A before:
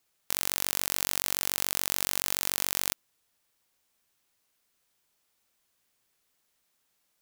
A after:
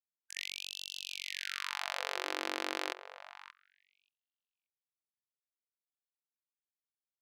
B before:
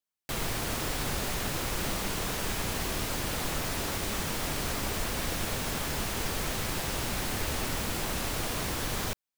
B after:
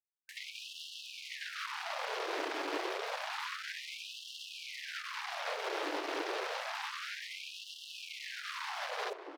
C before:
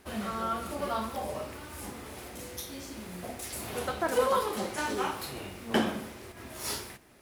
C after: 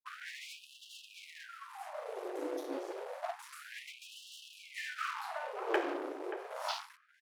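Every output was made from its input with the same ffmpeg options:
-filter_complex "[0:a]afwtdn=0.0112,aemphasis=mode=reproduction:type=bsi,asplit=2[link_01][link_02];[link_02]aeval=exprs='clip(val(0),-1,0.0447)':channel_layout=same,volume=-5dB[link_03];[link_01][link_03]amix=inputs=2:normalize=0,highpass=frequency=67:poles=1,highshelf=frequency=8100:gain=6.5,acompressor=threshold=-31dB:ratio=6,aeval=exprs='sgn(val(0))*max(abs(val(0))-0.00562,0)':channel_layout=same,acrossover=split=4600[link_04][link_05];[link_05]acompressor=threshold=-54dB:ratio=4:attack=1:release=60[link_06];[link_04][link_06]amix=inputs=2:normalize=0,asplit=2[link_07][link_08];[link_08]adelay=580,lowpass=frequency=1400:poles=1,volume=-9dB,asplit=2[link_09][link_10];[link_10]adelay=580,lowpass=frequency=1400:poles=1,volume=0.24,asplit=2[link_11][link_12];[link_12]adelay=580,lowpass=frequency=1400:poles=1,volume=0.24[link_13];[link_07][link_09][link_11][link_13]amix=inputs=4:normalize=0,afftfilt=real='re*gte(b*sr/1024,280*pow(2700/280,0.5+0.5*sin(2*PI*0.29*pts/sr)))':imag='im*gte(b*sr/1024,280*pow(2700/280,0.5+0.5*sin(2*PI*0.29*pts/sr)))':win_size=1024:overlap=0.75,volume=6.5dB"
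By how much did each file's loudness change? −10.0, −8.0, −8.0 LU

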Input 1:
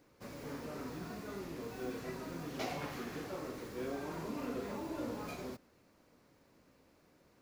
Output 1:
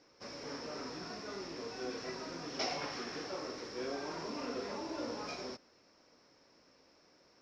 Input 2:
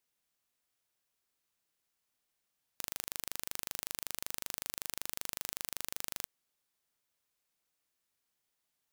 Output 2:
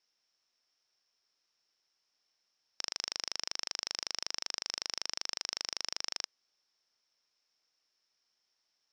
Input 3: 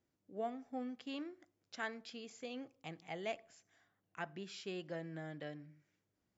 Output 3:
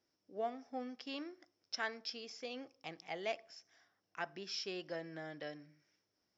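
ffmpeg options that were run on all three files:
-af "lowpass=frequency=5400:width_type=q:width=15,bass=frequency=250:gain=-10,treble=frequency=4000:gain=-9,volume=2dB"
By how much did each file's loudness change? +1.5, +3.0, +2.0 LU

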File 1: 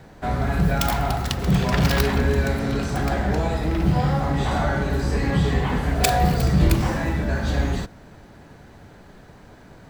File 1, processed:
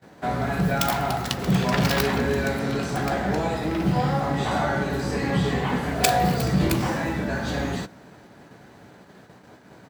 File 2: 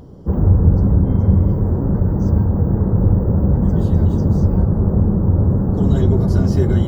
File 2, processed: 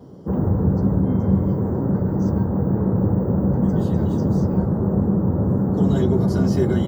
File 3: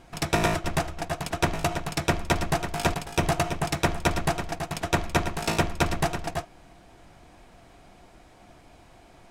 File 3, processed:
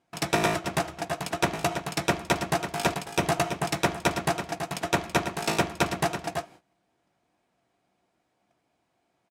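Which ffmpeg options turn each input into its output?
-filter_complex "[0:a]agate=range=-20dB:threshold=-46dB:ratio=16:detection=peak,highpass=140,asplit=2[link_01][link_02];[link_02]adelay=16,volume=-14dB[link_03];[link_01][link_03]amix=inputs=2:normalize=0"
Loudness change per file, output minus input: −2.0, −4.0, −0.5 LU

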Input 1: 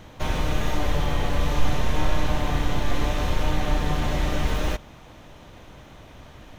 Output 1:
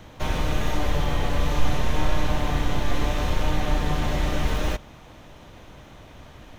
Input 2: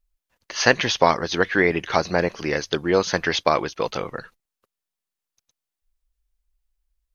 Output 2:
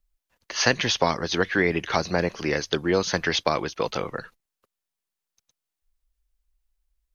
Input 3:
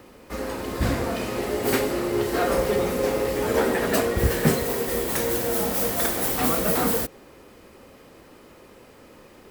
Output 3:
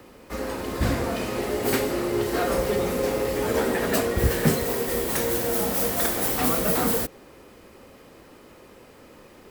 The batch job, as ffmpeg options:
-filter_complex "[0:a]acrossover=split=260|3000[link_01][link_02][link_03];[link_02]acompressor=threshold=-23dB:ratio=2[link_04];[link_01][link_04][link_03]amix=inputs=3:normalize=0"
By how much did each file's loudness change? 0.0, −3.0, −0.5 LU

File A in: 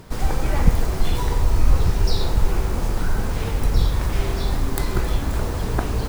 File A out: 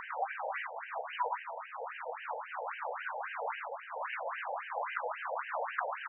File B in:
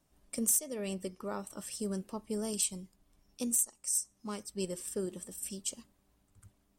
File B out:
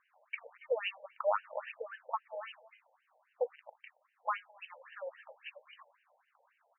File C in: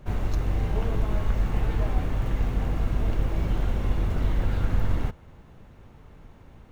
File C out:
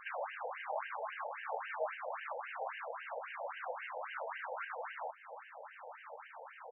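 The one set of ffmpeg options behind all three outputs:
-filter_complex "[0:a]acompressor=threshold=-33dB:ratio=4,asplit=2[link_01][link_02];[link_02]adelay=215.7,volume=-26dB,highshelf=frequency=4000:gain=-4.85[link_03];[link_01][link_03]amix=inputs=2:normalize=0,afftfilt=real='re*between(b*sr/1024,640*pow(2200/640,0.5+0.5*sin(2*PI*3.7*pts/sr))/1.41,640*pow(2200/640,0.5+0.5*sin(2*PI*3.7*pts/sr))*1.41)':imag='im*between(b*sr/1024,640*pow(2200/640,0.5+0.5*sin(2*PI*3.7*pts/sr))/1.41,640*pow(2200/640,0.5+0.5*sin(2*PI*3.7*pts/sr))*1.41)':win_size=1024:overlap=0.75,volume=13.5dB"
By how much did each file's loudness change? −14.5, −5.0, −14.5 LU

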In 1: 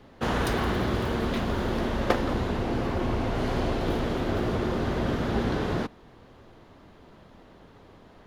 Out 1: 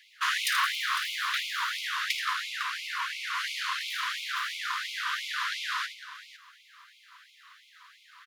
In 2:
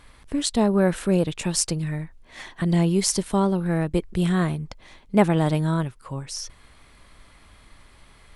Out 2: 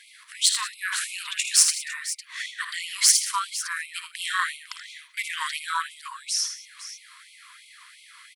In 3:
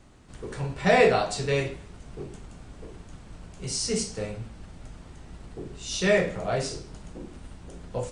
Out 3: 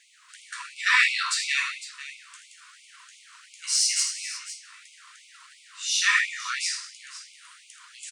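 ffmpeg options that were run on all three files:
-af "aeval=exprs='(tanh(3.55*val(0)+0.3)-tanh(0.3))/3.55':channel_layout=same,aecho=1:1:54|80|122|184|504:0.266|0.335|0.1|0.126|0.211,afftfilt=real='re*gte(b*sr/1024,940*pow(2100/940,0.5+0.5*sin(2*PI*2.9*pts/sr)))':imag='im*gte(b*sr/1024,940*pow(2100/940,0.5+0.5*sin(2*PI*2.9*pts/sr)))':win_size=1024:overlap=0.75,volume=8dB"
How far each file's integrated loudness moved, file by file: −2.0, −1.0, +2.0 LU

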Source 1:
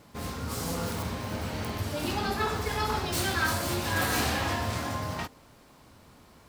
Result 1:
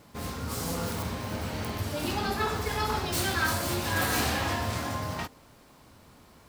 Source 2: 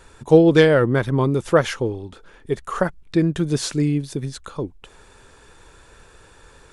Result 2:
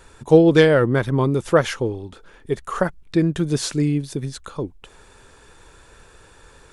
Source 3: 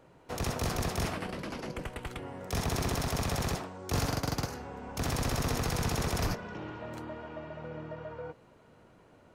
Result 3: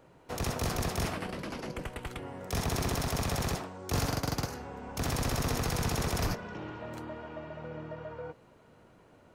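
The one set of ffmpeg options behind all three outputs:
-af "highshelf=frequency=12000:gain=3"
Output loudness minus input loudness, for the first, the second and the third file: 0.0, 0.0, 0.0 LU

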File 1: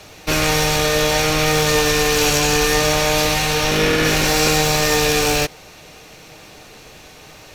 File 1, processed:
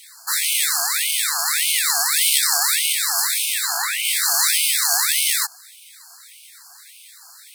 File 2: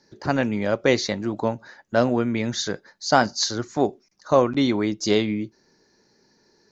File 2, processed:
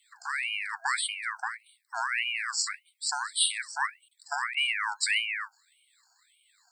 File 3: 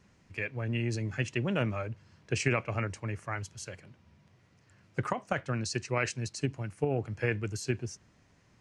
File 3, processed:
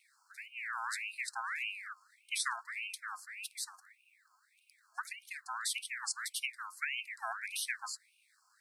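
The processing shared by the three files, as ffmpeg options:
-af "afftfilt=real='re*(1-between(b*sr/4096,480,5400))':imag='im*(1-between(b*sr/4096,480,5400))':win_size=4096:overlap=0.75,crystalizer=i=4:c=0,aeval=exprs='val(0)*sin(2*PI*1900*n/s+1900*0.4/1.7*sin(2*PI*1.7*n/s))':channel_layout=same,volume=-5dB"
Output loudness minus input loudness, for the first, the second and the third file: −1.0, −6.5, −5.5 LU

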